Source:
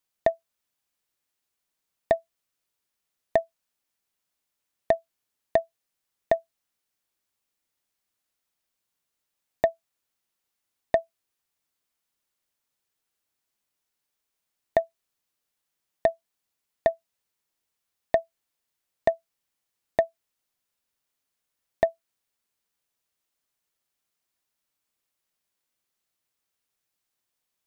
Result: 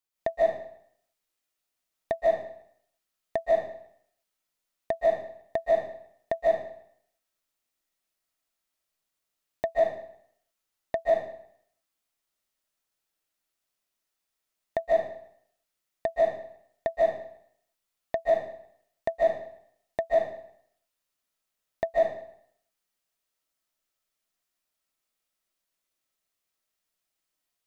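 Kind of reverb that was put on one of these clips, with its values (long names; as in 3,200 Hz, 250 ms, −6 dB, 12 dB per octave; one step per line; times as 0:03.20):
comb and all-pass reverb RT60 0.67 s, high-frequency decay 0.95×, pre-delay 110 ms, DRR −5.5 dB
level −7 dB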